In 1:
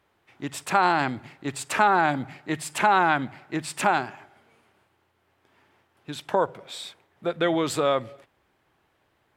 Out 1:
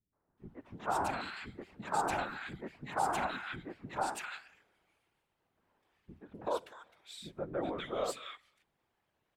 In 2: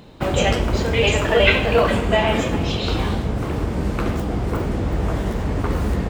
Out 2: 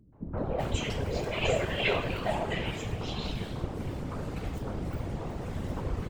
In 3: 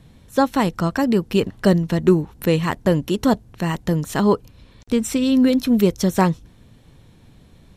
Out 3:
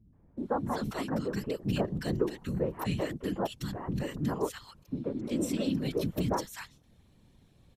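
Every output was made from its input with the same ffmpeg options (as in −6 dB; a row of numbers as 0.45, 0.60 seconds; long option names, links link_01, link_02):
-filter_complex "[0:a]acrossover=split=270|1500[link_01][link_02][link_03];[link_02]adelay=130[link_04];[link_03]adelay=380[link_05];[link_01][link_04][link_05]amix=inputs=3:normalize=0,afftfilt=real='hypot(re,im)*cos(2*PI*random(0))':imag='hypot(re,im)*sin(2*PI*random(1))':win_size=512:overlap=0.75,volume=-5.5dB"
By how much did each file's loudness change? −13.0, −12.5, −13.5 LU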